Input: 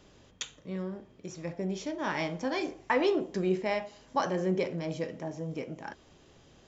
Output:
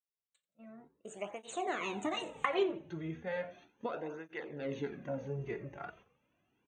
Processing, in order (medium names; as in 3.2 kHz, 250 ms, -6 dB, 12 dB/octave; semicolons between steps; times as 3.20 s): Doppler pass-by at 2.60 s, 54 m/s, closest 6 m; recorder AGC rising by 21 dB/s; spectral noise reduction 12 dB; gate -53 dBFS, range -13 dB; Butterworth band-stop 5.1 kHz, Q 1.8; bass shelf 320 Hz -7 dB; on a send: frequency-shifting echo 87 ms, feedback 39%, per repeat -81 Hz, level -19.5 dB; on the sum: cancelling through-zero flanger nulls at 0.35 Hz, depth 4.3 ms